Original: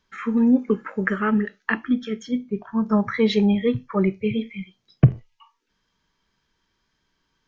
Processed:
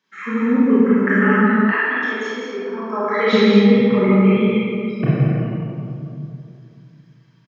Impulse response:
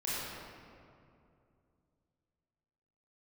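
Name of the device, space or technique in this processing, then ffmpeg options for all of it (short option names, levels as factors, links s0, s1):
stadium PA: -filter_complex "[0:a]highpass=f=160:w=0.5412,highpass=f=160:w=1.3066,equalizer=f=2100:t=o:w=1:g=4,aecho=1:1:166.2|207:0.501|0.251[s0];[1:a]atrim=start_sample=2205[s1];[s0][s1]afir=irnorm=-1:irlink=0,asettb=1/sr,asplit=3[s2][s3][s4];[s2]atrim=end=1.724[s5];[s3]atrim=start=1.72:end=3.33,asetpts=PTS-STARTPTS,afade=t=in:d=0.004:c=qsin,afade=t=out:st=1.606:d=0.004:c=qsin,highpass=f=340:w=0.5412,highpass=f=340:w=1.3066[s6];[s4]atrim=start=3.326[s7];[s5][s6]acrossfade=d=0.004:c1=hsin:c2=qsin[s8];[s8][s7]acrossfade=d=0.004:c1=qsin:c2=hsin"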